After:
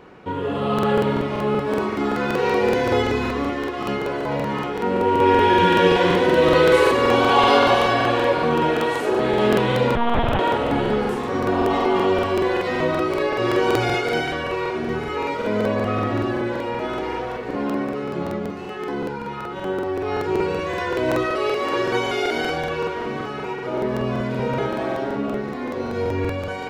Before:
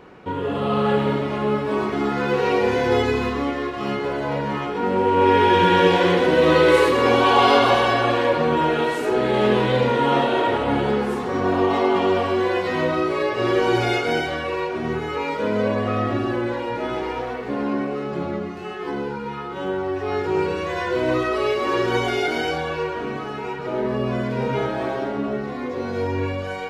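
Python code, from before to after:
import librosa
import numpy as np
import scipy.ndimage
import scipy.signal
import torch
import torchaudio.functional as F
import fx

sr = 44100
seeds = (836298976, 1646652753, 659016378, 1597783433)

y = fx.lpc_vocoder(x, sr, seeds[0], excitation='pitch_kept', order=8, at=(9.95, 10.39))
y = fx.low_shelf(y, sr, hz=120.0, db=-11.0, at=(21.26, 22.33))
y = fx.echo_feedback(y, sr, ms=783, feedback_pct=58, wet_db=-18.0)
y = fx.buffer_crackle(y, sr, first_s=0.74, period_s=0.19, block=2048, kind='repeat')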